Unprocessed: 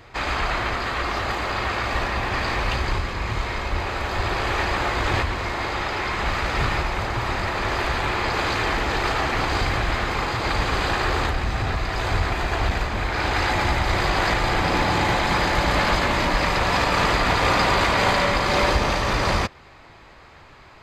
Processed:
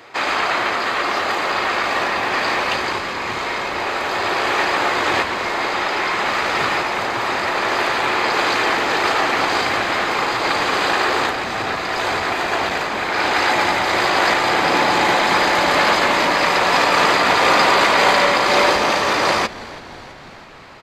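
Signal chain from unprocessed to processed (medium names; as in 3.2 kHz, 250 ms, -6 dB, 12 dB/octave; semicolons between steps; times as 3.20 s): high-pass 290 Hz 12 dB/octave; on a send: frequency-shifting echo 328 ms, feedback 64%, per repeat -120 Hz, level -19 dB; on the sum: trim +6 dB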